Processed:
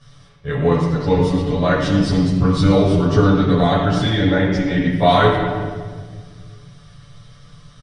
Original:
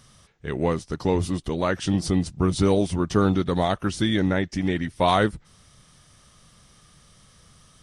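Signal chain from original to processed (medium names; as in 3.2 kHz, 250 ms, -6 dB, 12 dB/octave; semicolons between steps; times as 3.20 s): low-pass 5.1 kHz 12 dB/octave; comb 6.9 ms, depth 70%; reverberation RT60 1.7 s, pre-delay 13 ms, DRR -8.5 dB; trim -6 dB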